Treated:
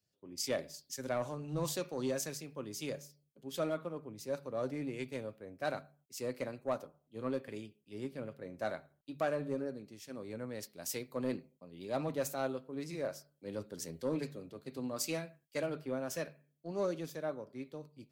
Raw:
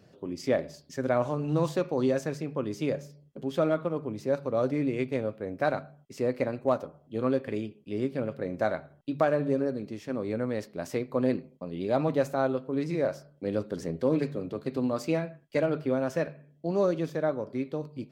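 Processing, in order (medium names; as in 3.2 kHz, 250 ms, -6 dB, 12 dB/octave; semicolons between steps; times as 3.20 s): pre-emphasis filter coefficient 0.8; saturation -30 dBFS, distortion -21 dB; three bands expanded up and down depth 70%; trim +4 dB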